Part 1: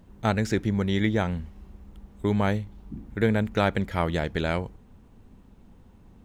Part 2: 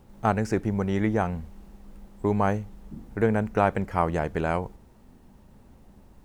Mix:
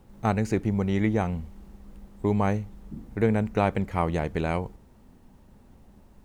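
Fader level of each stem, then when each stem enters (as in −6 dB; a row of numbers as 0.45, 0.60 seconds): −10.5, −1.5 decibels; 0.00, 0.00 seconds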